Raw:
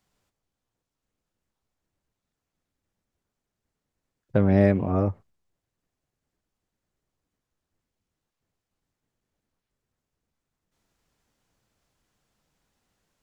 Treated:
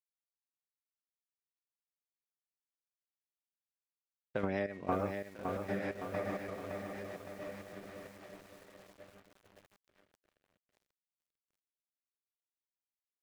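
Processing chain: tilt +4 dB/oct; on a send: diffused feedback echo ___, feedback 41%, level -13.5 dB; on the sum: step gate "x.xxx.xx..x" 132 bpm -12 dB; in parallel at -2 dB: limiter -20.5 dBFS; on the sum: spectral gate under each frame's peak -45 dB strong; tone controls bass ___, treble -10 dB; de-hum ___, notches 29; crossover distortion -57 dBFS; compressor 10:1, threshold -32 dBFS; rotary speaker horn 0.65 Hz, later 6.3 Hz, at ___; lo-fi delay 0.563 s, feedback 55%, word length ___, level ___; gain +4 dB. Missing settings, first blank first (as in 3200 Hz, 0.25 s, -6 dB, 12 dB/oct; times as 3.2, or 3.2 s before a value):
1.35 s, -4 dB, 314.3 Hz, 3.6, 10-bit, -5 dB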